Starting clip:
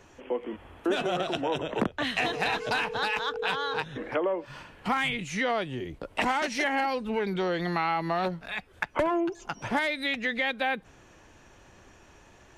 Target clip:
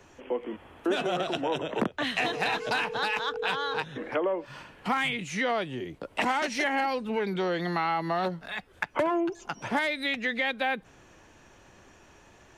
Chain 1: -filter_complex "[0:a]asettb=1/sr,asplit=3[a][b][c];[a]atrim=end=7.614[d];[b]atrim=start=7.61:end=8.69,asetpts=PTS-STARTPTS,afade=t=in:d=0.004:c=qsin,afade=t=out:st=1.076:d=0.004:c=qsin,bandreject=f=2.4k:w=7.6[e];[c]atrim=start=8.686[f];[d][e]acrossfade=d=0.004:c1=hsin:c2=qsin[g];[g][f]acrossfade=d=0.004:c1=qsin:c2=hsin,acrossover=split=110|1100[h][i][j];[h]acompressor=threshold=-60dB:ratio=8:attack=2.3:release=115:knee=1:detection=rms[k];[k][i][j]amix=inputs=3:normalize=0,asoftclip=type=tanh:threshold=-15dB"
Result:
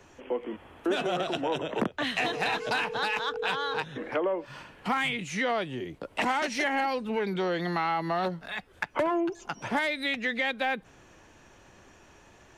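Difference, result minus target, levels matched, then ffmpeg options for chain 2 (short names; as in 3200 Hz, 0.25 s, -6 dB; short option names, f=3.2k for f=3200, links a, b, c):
soft clip: distortion +13 dB
-filter_complex "[0:a]asettb=1/sr,asplit=3[a][b][c];[a]atrim=end=7.614[d];[b]atrim=start=7.61:end=8.69,asetpts=PTS-STARTPTS,afade=t=in:d=0.004:c=qsin,afade=t=out:st=1.076:d=0.004:c=qsin,bandreject=f=2.4k:w=7.6[e];[c]atrim=start=8.686[f];[d][e]acrossfade=d=0.004:c1=hsin:c2=qsin[g];[g][f]acrossfade=d=0.004:c1=qsin:c2=hsin,acrossover=split=110|1100[h][i][j];[h]acompressor=threshold=-60dB:ratio=8:attack=2.3:release=115:knee=1:detection=rms[k];[k][i][j]amix=inputs=3:normalize=0,asoftclip=type=tanh:threshold=-8dB"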